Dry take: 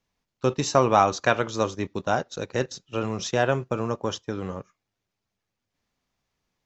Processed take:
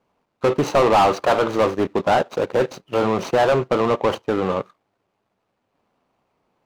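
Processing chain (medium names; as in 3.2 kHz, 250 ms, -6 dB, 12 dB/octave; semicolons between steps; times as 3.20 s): median filter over 25 samples; overdrive pedal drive 28 dB, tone 2.4 kHz, clips at -6 dBFS; trim -1 dB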